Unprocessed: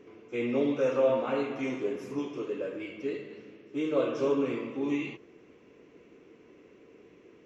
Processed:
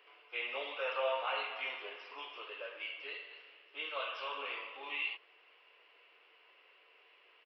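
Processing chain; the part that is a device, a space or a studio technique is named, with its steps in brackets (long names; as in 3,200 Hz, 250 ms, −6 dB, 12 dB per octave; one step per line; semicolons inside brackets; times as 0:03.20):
musical greeting card (downsampling to 11,025 Hz; high-pass filter 740 Hz 24 dB per octave; parametric band 2,900 Hz +9.5 dB 0.28 octaves)
0:03.89–0:04.35: parametric band 400 Hz −8 dB 1.3 octaves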